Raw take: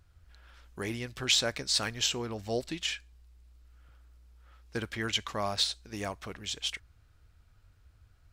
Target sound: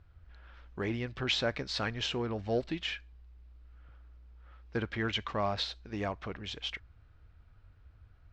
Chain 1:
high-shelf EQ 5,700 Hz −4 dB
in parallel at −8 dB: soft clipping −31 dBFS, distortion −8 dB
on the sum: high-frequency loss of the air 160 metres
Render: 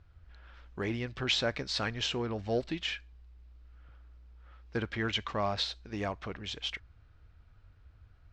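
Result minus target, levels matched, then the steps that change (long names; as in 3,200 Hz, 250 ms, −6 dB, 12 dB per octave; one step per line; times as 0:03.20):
8,000 Hz band +3.0 dB
change: high-shelf EQ 5,700 Hz −11 dB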